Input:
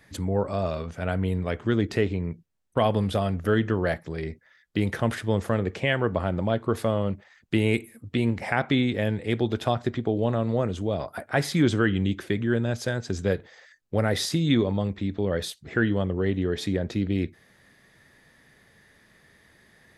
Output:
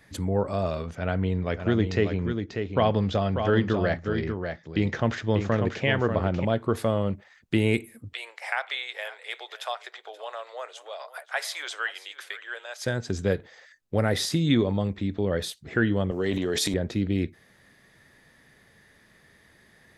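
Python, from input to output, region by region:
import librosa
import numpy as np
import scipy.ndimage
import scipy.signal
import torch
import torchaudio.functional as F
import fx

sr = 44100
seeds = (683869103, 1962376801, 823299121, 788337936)

y = fx.chain(x, sr, fx.steep_lowpass(hz=7100.0, slope=72),
    fx.echo_single(ms=591, db=-6.5), at=(0.95, 6.45))
y = fx.chain(y, sr, fx.bessel_highpass(hz=1000.0, order=8),
    fx.echo_single(ms=529, db=-17.0), at=(8.13, 12.86))
y = fx.chain(y, sr, fx.highpass(hz=100.0, slope=12),
    fx.bass_treble(bass_db=-5, treble_db=14),
    fx.transient(attack_db=0, sustain_db=9), at=(16.11, 16.74))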